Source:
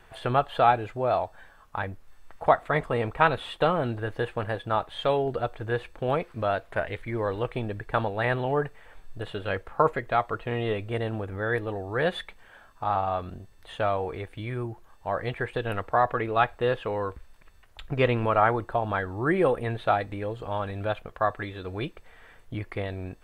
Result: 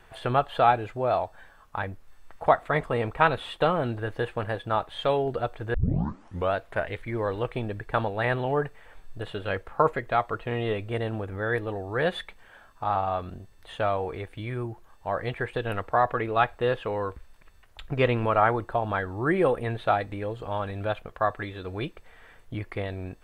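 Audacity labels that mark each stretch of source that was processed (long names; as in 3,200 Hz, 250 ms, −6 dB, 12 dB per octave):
5.740000	5.740000	tape start 0.79 s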